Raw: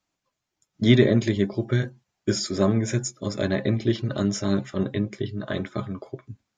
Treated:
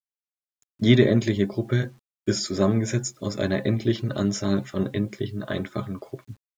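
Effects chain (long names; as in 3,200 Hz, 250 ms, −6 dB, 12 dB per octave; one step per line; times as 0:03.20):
bit reduction 10 bits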